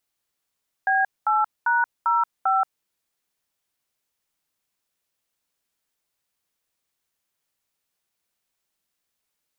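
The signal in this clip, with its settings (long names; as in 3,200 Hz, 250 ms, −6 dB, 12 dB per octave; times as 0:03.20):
touch tones "B8#05", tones 179 ms, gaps 217 ms, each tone −20 dBFS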